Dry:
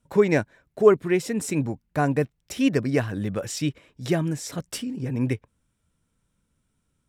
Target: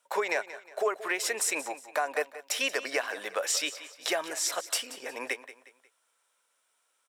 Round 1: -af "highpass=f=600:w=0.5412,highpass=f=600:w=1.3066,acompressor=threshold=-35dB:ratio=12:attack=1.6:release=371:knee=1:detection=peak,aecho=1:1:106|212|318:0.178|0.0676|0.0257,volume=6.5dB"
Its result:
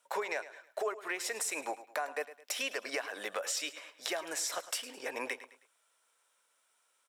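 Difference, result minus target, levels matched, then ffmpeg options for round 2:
echo 74 ms early; compressor: peak gain reduction +7 dB
-af "highpass=f=600:w=0.5412,highpass=f=600:w=1.3066,acompressor=threshold=-27.5dB:ratio=12:attack=1.6:release=371:knee=1:detection=peak,aecho=1:1:180|360|540:0.178|0.0676|0.0257,volume=6.5dB"

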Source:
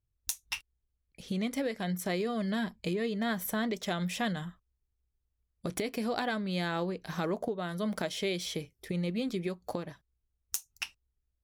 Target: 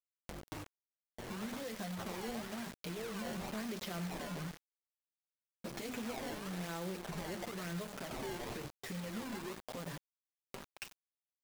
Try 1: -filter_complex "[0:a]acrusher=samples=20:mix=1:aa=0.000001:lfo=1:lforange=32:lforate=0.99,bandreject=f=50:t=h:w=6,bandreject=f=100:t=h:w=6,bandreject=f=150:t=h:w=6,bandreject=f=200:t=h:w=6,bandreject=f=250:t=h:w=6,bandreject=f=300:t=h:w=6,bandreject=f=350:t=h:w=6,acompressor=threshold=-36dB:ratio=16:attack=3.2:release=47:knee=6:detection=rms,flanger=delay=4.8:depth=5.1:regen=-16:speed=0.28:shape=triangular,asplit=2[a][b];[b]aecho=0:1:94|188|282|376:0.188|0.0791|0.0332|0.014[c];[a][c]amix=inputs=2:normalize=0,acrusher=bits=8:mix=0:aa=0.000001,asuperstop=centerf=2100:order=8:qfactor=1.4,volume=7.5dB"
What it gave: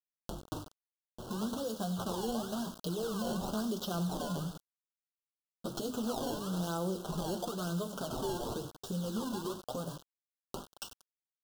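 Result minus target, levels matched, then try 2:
2000 Hz band -10.0 dB; compressor: peak gain reduction -7 dB
-filter_complex "[0:a]acrusher=samples=20:mix=1:aa=0.000001:lfo=1:lforange=32:lforate=0.99,bandreject=f=50:t=h:w=6,bandreject=f=100:t=h:w=6,bandreject=f=150:t=h:w=6,bandreject=f=200:t=h:w=6,bandreject=f=250:t=h:w=6,bandreject=f=300:t=h:w=6,bandreject=f=350:t=h:w=6,acompressor=threshold=-43.5dB:ratio=16:attack=3.2:release=47:knee=6:detection=rms,flanger=delay=4.8:depth=5.1:regen=-16:speed=0.28:shape=triangular,asplit=2[a][b];[b]aecho=0:1:94|188|282|376:0.188|0.0791|0.0332|0.014[c];[a][c]amix=inputs=2:normalize=0,acrusher=bits=8:mix=0:aa=0.000001,volume=7.5dB"

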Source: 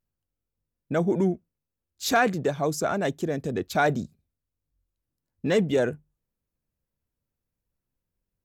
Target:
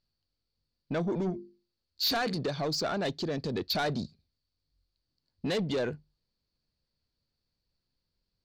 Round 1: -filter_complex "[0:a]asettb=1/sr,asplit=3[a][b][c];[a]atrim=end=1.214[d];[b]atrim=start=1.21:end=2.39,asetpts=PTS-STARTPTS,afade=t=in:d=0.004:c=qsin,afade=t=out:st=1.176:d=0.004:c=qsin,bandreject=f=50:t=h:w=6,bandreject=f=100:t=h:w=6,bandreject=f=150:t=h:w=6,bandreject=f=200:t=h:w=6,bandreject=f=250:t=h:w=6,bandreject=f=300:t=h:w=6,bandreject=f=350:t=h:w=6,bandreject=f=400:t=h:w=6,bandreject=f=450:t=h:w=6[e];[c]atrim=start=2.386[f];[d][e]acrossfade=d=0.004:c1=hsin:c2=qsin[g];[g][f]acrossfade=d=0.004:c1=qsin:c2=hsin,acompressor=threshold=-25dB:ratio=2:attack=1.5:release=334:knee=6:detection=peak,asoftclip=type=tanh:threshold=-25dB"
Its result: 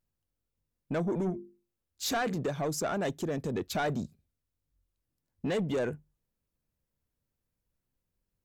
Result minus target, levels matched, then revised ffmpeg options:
4000 Hz band -7.0 dB
-filter_complex "[0:a]asettb=1/sr,asplit=3[a][b][c];[a]atrim=end=1.214[d];[b]atrim=start=1.21:end=2.39,asetpts=PTS-STARTPTS,afade=t=in:d=0.004:c=qsin,afade=t=out:st=1.176:d=0.004:c=qsin,bandreject=f=50:t=h:w=6,bandreject=f=100:t=h:w=6,bandreject=f=150:t=h:w=6,bandreject=f=200:t=h:w=6,bandreject=f=250:t=h:w=6,bandreject=f=300:t=h:w=6,bandreject=f=350:t=h:w=6,bandreject=f=400:t=h:w=6,bandreject=f=450:t=h:w=6[e];[c]atrim=start=2.386[f];[d][e]acrossfade=d=0.004:c1=hsin:c2=qsin[g];[g][f]acrossfade=d=0.004:c1=qsin:c2=hsin,acompressor=threshold=-25dB:ratio=2:attack=1.5:release=334:knee=6:detection=peak,lowpass=f=4.5k:t=q:w=12,asoftclip=type=tanh:threshold=-25dB"

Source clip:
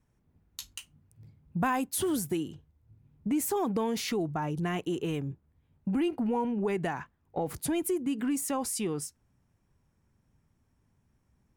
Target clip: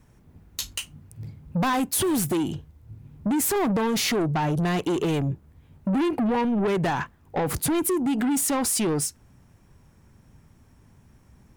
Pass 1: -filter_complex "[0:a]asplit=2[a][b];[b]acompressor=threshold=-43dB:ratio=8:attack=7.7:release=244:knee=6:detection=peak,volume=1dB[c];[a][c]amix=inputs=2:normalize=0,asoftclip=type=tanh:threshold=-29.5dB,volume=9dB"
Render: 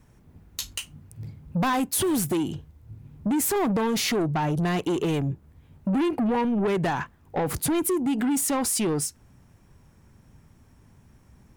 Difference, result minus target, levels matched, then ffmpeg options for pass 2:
compressor: peak gain reduction +7.5 dB
-filter_complex "[0:a]asplit=2[a][b];[b]acompressor=threshold=-34.5dB:ratio=8:attack=7.7:release=244:knee=6:detection=peak,volume=1dB[c];[a][c]amix=inputs=2:normalize=0,asoftclip=type=tanh:threshold=-29.5dB,volume=9dB"

